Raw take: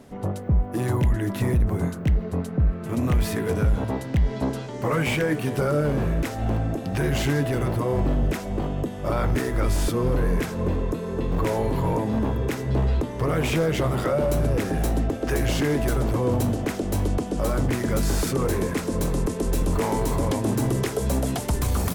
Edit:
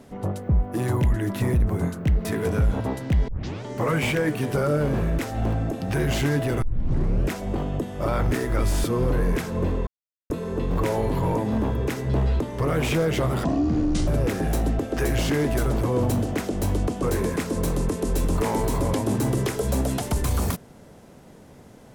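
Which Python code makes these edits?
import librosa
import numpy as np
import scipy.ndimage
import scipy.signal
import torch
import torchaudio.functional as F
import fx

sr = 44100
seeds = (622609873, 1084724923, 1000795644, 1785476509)

y = fx.edit(x, sr, fx.cut(start_s=2.25, length_s=1.04),
    fx.tape_start(start_s=4.32, length_s=0.36),
    fx.tape_start(start_s=7.66, length_s=0.68),
    fx.insert_silence(at_s=10.91, length_s=0.43),
    fx.speed_span(start_s=14.05, length_s=0.33, speed=0.52),
    fx.cut(start_s=17.33, length_s=1.07), tone=tone)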